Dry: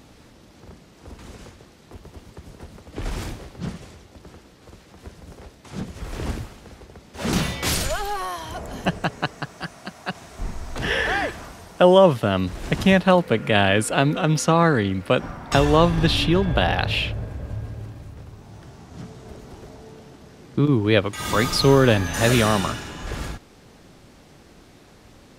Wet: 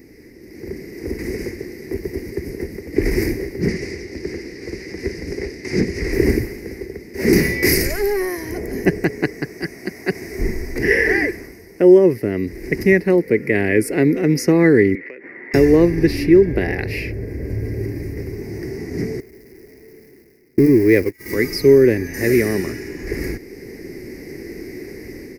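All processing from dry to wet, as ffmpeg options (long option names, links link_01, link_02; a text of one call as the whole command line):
ffmpeg -i in.wav -filter_complex "[0:a]asettb=1/sr,asplit=3[link_01][link_02][link_03];[link_01]atrim=end=3.684[link_04];[link_02]atrim=start=3.68:end=6.13,asetpts=PTS-STARTPTS,afade=type=in:duration=0.004:curve=qsin,afade=type=out:start_time=2.446:duration=0.004:curve=qsin,lowpass=5100,highshelf=frequency=2900:gain=11.5[link_05];[link_03]atrim=start=6.126[link_06];[link_04][link_05]acrossfade=duration=0.004:curve1=hsin:curve2=qsin[link_07];[link_07][link_06]acrossfade=duration=0.004:curve1=qsin:curve2=hsin,asettb=1/sr,asplit=3[link_08][link_09][link_10];[link_08]atrim=end=14.954[link_11];[link_09]atrim=start=14.95:end=15.54,asetpts=PTS-STARTPTS,afade=type=in:duration=0.004:curve=qsin,afade=type=out:start_time=0.586:duration=0.004:curve=qsin,highpass=440,equalizer=frequency=720:width_type=q:width=4:gain=-5,equalizer=frequency=1900:width_type=q:width=4:gain=10,equalizer=frequency=2700:width_type=q:width=4:gain=5,lowpass=frequency=2800:width=0.5412,lowpass=frequency=2800:width=1.3066,acompressor=threshold=-35dB:ratio=12:attack=3.2:release=140:knee=1:detection=peak[link_12];[link_10]atrim=start=15.536[link_13];[link_11][link_12]acrossfade=duration=0.004:curve1=hsin:curve2=qsin[link_14];[link_14][link_13]acrossfade=duration=0.004:curve1=qsin:curve2=hsin,asettb=1/sr,asplit=3[link_15][link_16][link_17];[link_15]atrim=end=19.204[link_18];[link_16]atrim=start=19.2:end=21.34,asetpts=PTS-STARTPTS,afade=type=in:duration=0.004:curve=qsin,afade=type=out:start_time=2.136:duration=0.004:curve=qsin,aeval=exprs='val(0)+0.5*0.0841*sgn(val(0))':channel_layout=same,agate=range=-34dB:threshold=-22dB:ratio=16:release=100:detection=peak[link_19];[link_17]atrim=start=21.336[link_20];[link_18][link_19]acrossfade=duration=0.004:curve1=hsin:curve2=qsin[link_21];[link_21][link_20]acrossfade=duration=0.004:curve1=qsin:curve2=hsin,firequalizer=gain_entry='entry(170,0);entry(380,15);entry(590,-6);entry(840,-10);entry(1300,-15);entry(2000,13);entry(3300,-26);entry(4900,5);entry(7300,-8);entry(12000,9)':delay=0.05:min_phase=1,dynaudnorm=framelen=400:gausssize=3:maxgain=11.5dB,volume=-1dB" out.wav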